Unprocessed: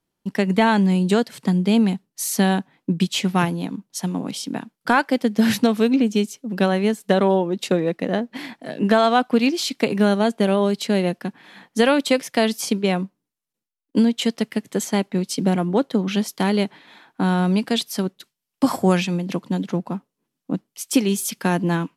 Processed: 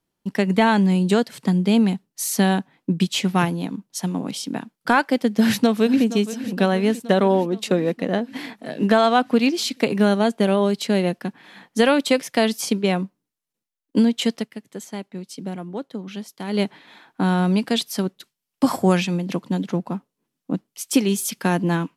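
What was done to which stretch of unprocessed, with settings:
0:05.36–0:06.05: delay throw 470 ms, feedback 70%, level −14 dB
0:14.35–0:16.60: duck −11 dB, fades 0.13 s

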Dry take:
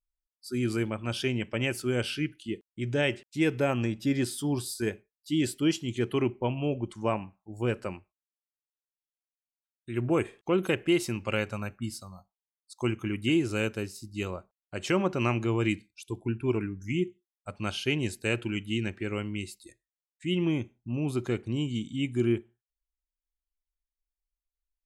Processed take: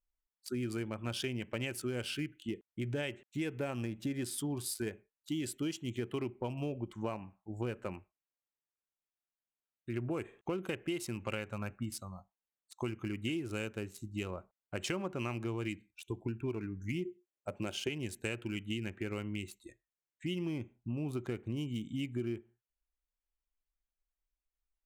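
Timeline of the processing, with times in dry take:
0:17.05–0:17.89: loudspeaker in its box 100–9,200 Hz, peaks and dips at 360 Hz +9 dB, 560 Hz +6 dB, 1,200 Hz −6 dB, 4,100 Hz −4 dB, 7,100 Hz +7 dB
whole clip: adaptive Wiener filter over 9 samples; high-shelf EQ 5,200 Hz +7.5 dB; downward compressor 6 to 1, threshold −34 dBFS

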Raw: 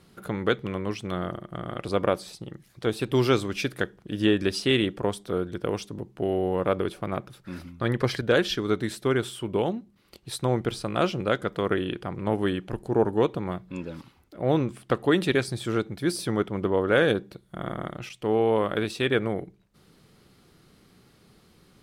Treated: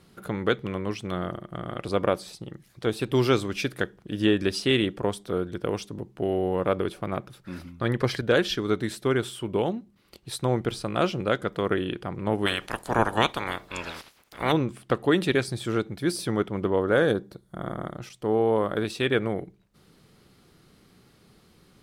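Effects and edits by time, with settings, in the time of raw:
0:12.45–0:14.51: ceiling on every frequency bin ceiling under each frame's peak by 27 dB
0:16.84–0:18.85: parametric band 2,600 Hz −9.5 dB 0.72 octaves

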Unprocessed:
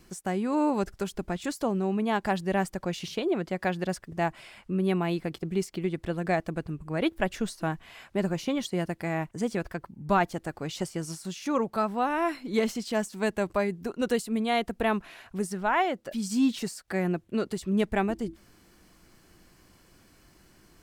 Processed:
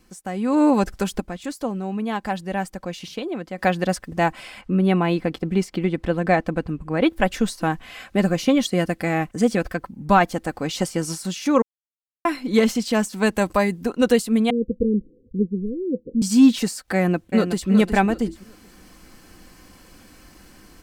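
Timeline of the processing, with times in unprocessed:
0:01.20–0:03.58: clip gain −9 dB
0:04.61–0:07.10: high-shelf EQ 5,200 Hz −10 dB
0:07.87–0:09.78: Butterworth band-reject 920 Hz, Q 5.1
0:11.62–0:12.25: silence
0:13.35–0:13.83: high-shelf EQ 5,400 Hz +6.5 dB
0:14.50–0:16.22: Chebyshev low-pass filter 510 Hz, order 10
0:16.95–0:17.69: delay throw 370 ms, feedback 25%, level −7 dB
whole clip: comb filter 3.9 ms, depth 39%; automatic gain control gain up to 11.5 dB; level −2 dB

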